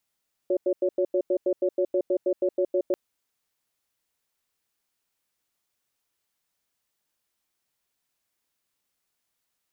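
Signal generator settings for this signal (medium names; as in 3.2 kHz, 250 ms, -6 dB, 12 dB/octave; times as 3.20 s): cadence 363 Hz, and 561 Hz, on 0.07 s, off 0.09 s, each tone -23 dBFS 2.44 s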